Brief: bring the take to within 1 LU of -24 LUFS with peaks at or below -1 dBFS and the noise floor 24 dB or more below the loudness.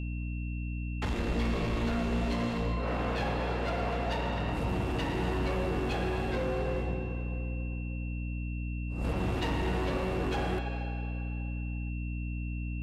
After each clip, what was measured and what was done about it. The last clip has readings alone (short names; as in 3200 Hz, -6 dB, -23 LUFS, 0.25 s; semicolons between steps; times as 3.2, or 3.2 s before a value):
hum 60 Hz; harmonics up to 300 Hz; hum level -32 dBFS; steady tone 2700 Hz; tone level -47 dBFS; loudness -33.0 LUFS; peak -22.0 dBFS; loudness target -24.0 LUFS
-> notches 60/120/180/240/300 Hz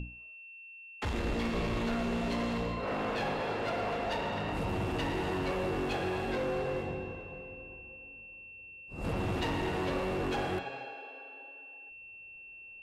hum none; steady tone 2700 Hz; tone level -47 dBFS
-> notch 2700 Hz, Q 30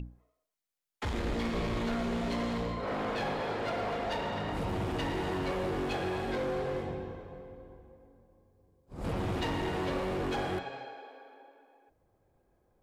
steady tone none; loudness -34.0 LUFS; peak -23.5 dBFS; loudness target -24.0 LUFS
-> gain +10 dB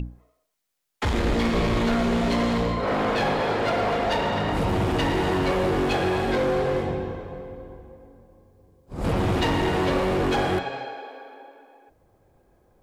loudness -24.0 LUFS; peak -13.5 dBFS; noise floor -71 dBFS